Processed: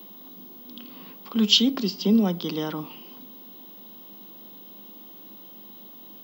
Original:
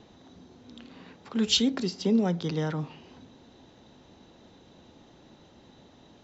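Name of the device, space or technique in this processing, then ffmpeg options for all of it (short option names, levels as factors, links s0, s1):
old television with a line whistle: -af "highpass=f=200:w=0.5412,highpass=f=200:w=1.3066,equalizer=f=200:t=q:w=4:g=10,equalizer=f=310:t=q:w=4:g=4,equalizer=f=1100:t=q:w=4:g=7,equalizer=f=1700:t=q:w=4:g=-5,equalizer=f=3100:t=q:w=4:g=10,equalizer=f=5000:t=q:w=4:g=6,lowpass=f=6900:w=0.5412,lowpass=f=6900:w=1.3066,aeval=exprs='val(0)+0.00708*sin(2*PI*15625*n/s)':c=same"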